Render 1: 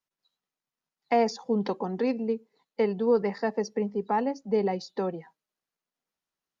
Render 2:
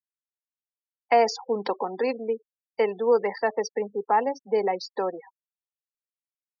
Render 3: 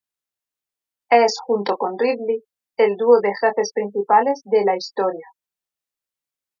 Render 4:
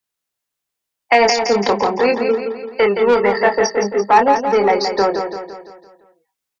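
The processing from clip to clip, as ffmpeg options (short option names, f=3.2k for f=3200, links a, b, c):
-af "highpass=480,afftfilt=real='re*gte(hypot(re,im),0.01)':imag='im*gte(hypot(re,im),0.01)':win_size=1024:overlap=0.75,volume=6dB"
-filter_complex "[0:a]asplit=2[a][b];[b]adelay=25,volume=-6.5dB[c];[a][c]amix=inputs=2:normalize=0,volume=6dB"
-filter_complex "[0:a]acrossover=split=240|1000|1700[a][b][c][d];[b]asoftclip=type=tanh:threshold=-19.5dB[e];[a][e][c][d]amix=inputs=4:normalize=0,aecho=1:1:170|340|510|680|850|1020:0.447|0.223|0.112|0.0558|0.0279|0.014,volume=6.5dB"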